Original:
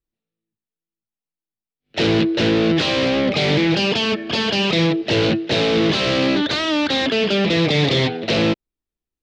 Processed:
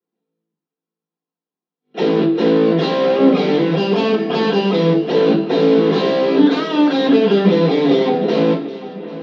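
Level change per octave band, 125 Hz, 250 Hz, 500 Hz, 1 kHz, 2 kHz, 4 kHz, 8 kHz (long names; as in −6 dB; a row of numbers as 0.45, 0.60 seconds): 0.0 dB, +4.5 dB, +6.0 dB, +4.0 dB, −5.0 dB, −6.5 dB, below −10 dB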